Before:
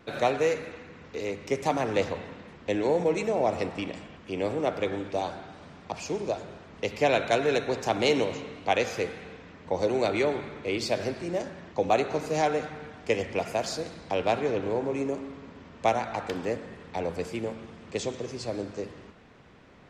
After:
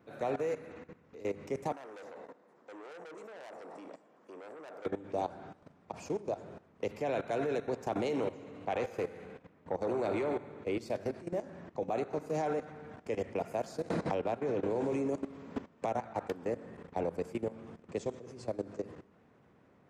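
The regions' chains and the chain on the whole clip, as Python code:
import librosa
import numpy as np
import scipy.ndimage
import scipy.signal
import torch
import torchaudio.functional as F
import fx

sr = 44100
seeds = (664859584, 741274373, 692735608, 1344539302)

y = fx.chain(x, sr, fx.highpass(hz=410.0, slope=12),
    fx.peak_eq(hz=2700.0, db=-9.5, octaves=1.2),
    fx.transformer_sat(knee_hz=3600.0), at=(1.72, 4.86))
y = fx.chain(y, sr, fx.peak_eq(hz=5700.0, db=-3.5, octaves=0.67),
    fx.echo_feedback(ms=72, feedback_pct=54, wet_db=-11),
    fx.transformer_sat(knee_hz=960.0), at=(8.16, 10.62))
y = fx.chain(y, sr, fx.gate_hold(open_db=-36.0, close_db=-43.0, hold_ms=71.0, range_db=-21, attack_ms=1.4, release_ms=100.0),
    fx.band_squash(depth_pct=100), at=(13.89, 16.13))
y = scipy.signal.sosfilt(scipy.signal.butter(2, 90.0, 'highpass', fs=sr, output='sos'), y)
y = fx.peak_eq(y, sr, hz=3900.0, db=-11.0, octaves=2.2)
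y = fx.level_steps(y, sr, step_db=16)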